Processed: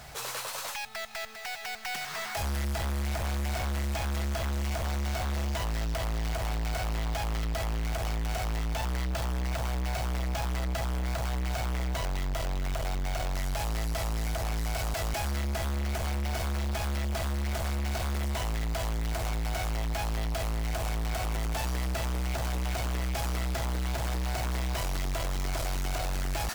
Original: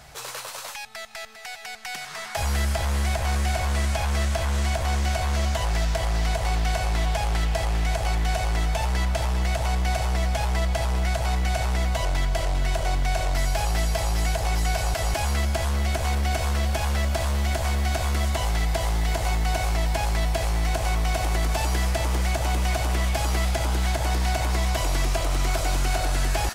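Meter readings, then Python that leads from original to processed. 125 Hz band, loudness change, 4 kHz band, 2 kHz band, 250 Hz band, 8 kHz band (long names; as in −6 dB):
−7.0 dB, −7.0 dB, −6.5 dB, −7.0 dB, −4.0 dB, −7.0 dB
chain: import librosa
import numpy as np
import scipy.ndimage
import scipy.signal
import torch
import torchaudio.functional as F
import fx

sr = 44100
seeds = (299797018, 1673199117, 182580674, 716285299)

y = np.repeat(x[::2], 2)[:len(x)]
y = 10.0 ** (-29.5 / 20.0) * np.tanh(y / 10.0 ** (-29.5 / 20.0))
y = y * 10.0 ** (1.0 / 20.0)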